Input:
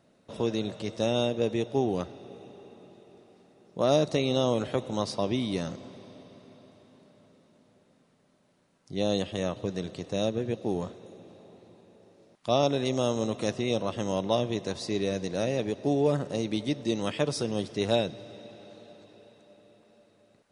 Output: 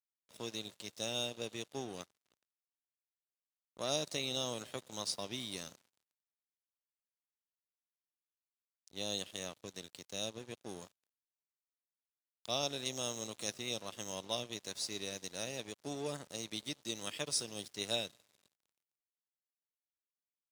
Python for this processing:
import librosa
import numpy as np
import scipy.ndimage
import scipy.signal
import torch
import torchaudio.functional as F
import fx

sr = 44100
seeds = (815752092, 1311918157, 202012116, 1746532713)

y = librosa.effects.preemphasis(x, coef=0.9, zi=[0.0])
y = np.sign(y) * np.maximum(np.abs(y) - 10.0 ** (-55.0 / 20.0), 0.0)
y = scipy.signal.sosfilt(scipy.signal.butter(2, 74.0, 'highpass', fs=sr, output='sos'), y)
y = y * 10.0 ** (4.5 / 20.0)